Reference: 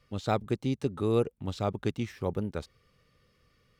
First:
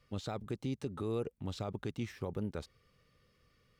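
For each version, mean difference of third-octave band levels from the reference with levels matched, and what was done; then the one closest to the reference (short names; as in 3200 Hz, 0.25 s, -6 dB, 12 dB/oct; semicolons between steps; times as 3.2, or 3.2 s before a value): 3.0 dB: limiter -24.5 dBFS, peak gain reduction 11.5 dB; gain -3 dB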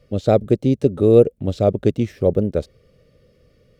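5.5 dB: resonant low shelf 740 Hz +7.5 dB, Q 3; gain +4 dB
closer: first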